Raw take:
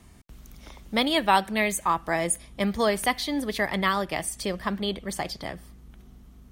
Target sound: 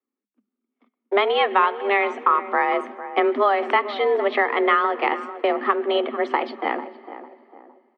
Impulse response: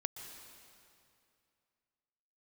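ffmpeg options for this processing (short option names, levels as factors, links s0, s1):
-filter_complex "[0:a]lowpass=f=2800:w=0.5412,lowpass=f=2800:w=1.3066,agate=range=0.00447:threshold=0.0112:ratio=16:detection=peak,equalizer=f=1100:t=o:w=0.42:g=6.5,acompressor=threshold=0.0447:ratio=4,asplit=2[s0][s1];[s1]adelay=367,lowpass=f=1100:p=1,volume=0.251,asplit=2[s2][s3];[s3]adelay=367,lowpass=f=1100:p=1,volume=0.39,asplit=2[s4][s5];[s5]adelay=367,lowpass=f=1100:p=1,volume=0.39,asplit=2[s6][s7];[s7]adelay=367,lowpass=f=1100:p=1,volume=0.39[s8];[s0][s2][s4][s6][s8]amix=inputs=5:normalize=0,atempo=0.9,afreqshift=220,asplit=2[s9][s10];[1:a]atrim=start_sample=2205[s11];[s10][s11]afir=irnorm=-1:irlink=0,volume=0.224[s12];[s9][s12]amix=inputs=2:normalize=0,asetrate=40043,aresample=44100,volume=2.82"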